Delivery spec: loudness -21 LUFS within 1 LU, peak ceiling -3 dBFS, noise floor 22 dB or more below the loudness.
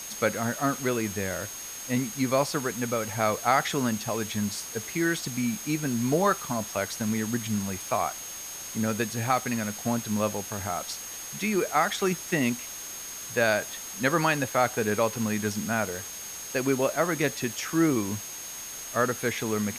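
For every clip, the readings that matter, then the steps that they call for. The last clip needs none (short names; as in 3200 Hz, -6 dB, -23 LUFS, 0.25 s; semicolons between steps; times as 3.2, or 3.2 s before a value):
steady tone 6500 Hz; tone level -39 dBFS; noise floor -39 dBFS; noise floor target -50 dBFS; loudness -28.0 LUFS; peak -9.0 dBFS; loudness target -21.0 LUFS
-> notch 6500 Hz, Q 30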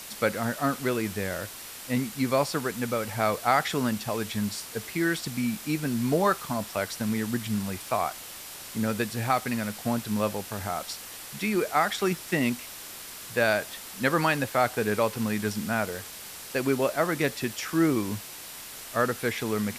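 steady tone none; noise floor -42 dBFS; noise floor target -50 dBFS
-> denoiser 8 dB, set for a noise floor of -42 dBFS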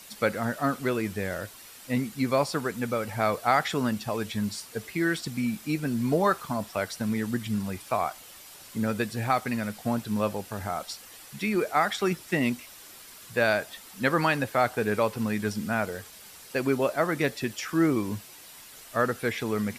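noise floor -48 dBFS; noise floor target -51 dBFS
-> denoiser 6 dB, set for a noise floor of -48 dBFS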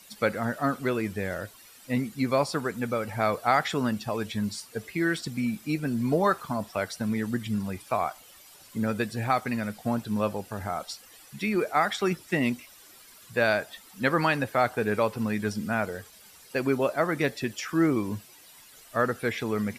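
noise floor -52 dBFS; loudness -28.5 LUFS; peak -9.0 dBFS; loudness target -21.0 LUFS
-> gain +7.5 dB; limiter -3 dBFS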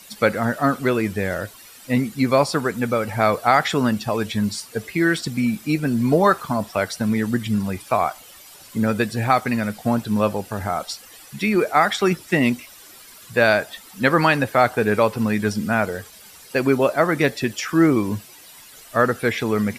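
loudness -21.0 LUFS; peak -3.0 dBFS; noise floor -45 dBFS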